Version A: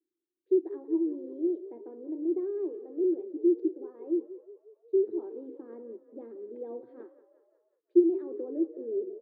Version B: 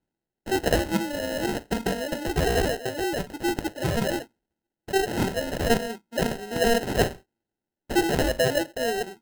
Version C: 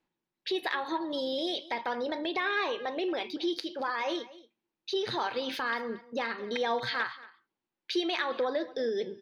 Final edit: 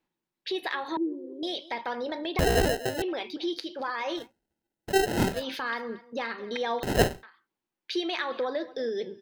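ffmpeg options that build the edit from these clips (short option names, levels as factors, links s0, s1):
-filter_complex "[1:a]asplit=3[s0][s1][s2];[2:a]asplit=5[s3][s4][s5][s6][s7];[s3]atrim=end=0.972[s8];[0:a]atrim=start=0.968:end=1.432[s9];[s4]atrim=start=1.428:end=2.392[s10];[s0]atrim=start=2.388:end=3.022[s11];[s5]atrim=start=3.018:end=4.32[s12];[s1]atrim=start=4.16:end=5.45[s13];[s6]atrim=start=5.29:end=6.832[s14];[s2]atrim=start=6.828:end=7.232[s15];[s7]atrim=start=7.228[s16];[s8][s9]acrossfade=d=0.004:c1=hsin:c2=hsin[s17];[s17][s10]acrossfade=d=0.004:c1=hsin:c2=hsin[s18];[s18][s11]acrossfade=d=0.004:c1=hsin:c2=hsin[s19];[s19][s12]acrossfade=d=0.004:c1=hsin:c2=hsin[s20];[s20][s13]acrossfade=d=0.16:c1=tri:c2=tri[s21];[s21][s14]acrossfade=d=0.16:c1=tri:c2=tri[s22];[s22][s15]acrossfade=d=0.004:c1=hsin:c2=hsin[s23];[s23][s16]acrossfade=d=0.004:c1=hsin:c2=hsin"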